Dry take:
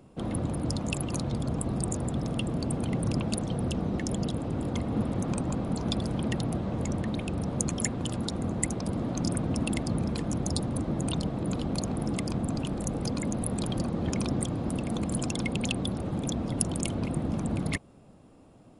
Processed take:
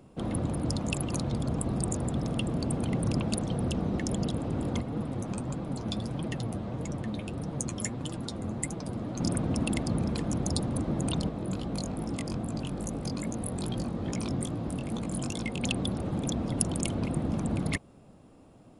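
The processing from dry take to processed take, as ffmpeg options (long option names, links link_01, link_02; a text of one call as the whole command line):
ffmpeg -i in.wav -filter_complex "[0:a]asplit=3[link_01][link_02][link_03];[link_01]afade=type=out:start_time=4.8:duration=0.02[link_04];[link_02]flanger=delay=5.8:depth=4.4:regen=45:speed=1.6:shape=triangular,afade=type=in:start_time=4.8:duration=0.02,afade=type=out:start_time=9.19:duration=0.02[link_05];[link_03]afade=type=in:start_time=9.19:duration=0.02[link_06];[link_04][link_05][link_06]amix=inputs=3:normalize=0,asplit=3[link_07][link_08][link_09];[link_07]afade=type=out:start_time=11.28:duration=0.02[link_10];[link_08]flanger=delay=17:depth=5.4:speed=2.4,afade=type=in:start_time=11.28:duration=0.02,afade=type=out:start_time=15.62:duration=0.02[link_11];[link_09]afade=type=in:start_time=15.62:duration=0.02[link_12];[link_10][link_11][link_12]amix=inputs=3:normalize=0" out.wav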